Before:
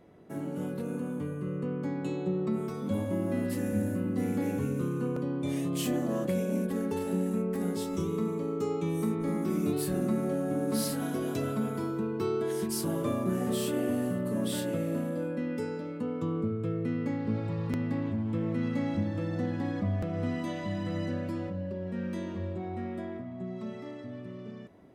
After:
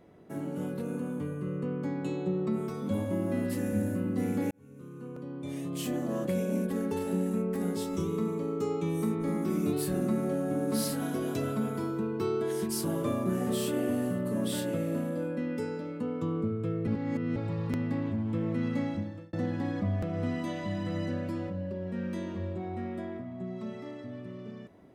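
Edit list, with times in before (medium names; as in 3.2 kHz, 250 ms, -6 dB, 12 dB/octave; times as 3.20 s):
4.51–6.44 s: fade in linear
16.87–17.36 s: reverse
18.80–19.33 s: fade out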